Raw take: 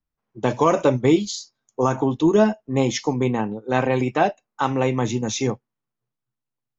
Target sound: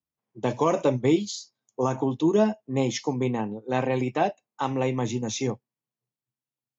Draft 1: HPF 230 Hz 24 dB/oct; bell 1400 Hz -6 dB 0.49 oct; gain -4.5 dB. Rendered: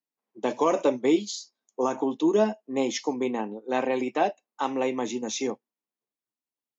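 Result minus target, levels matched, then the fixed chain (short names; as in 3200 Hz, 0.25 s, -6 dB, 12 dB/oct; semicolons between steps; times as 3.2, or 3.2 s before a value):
125 Hz band -15.0 dB
HPF 84 Hz 24 dB/oct; bell 1400 Hz -6 dB 0.49 oct; gain -4.5 dB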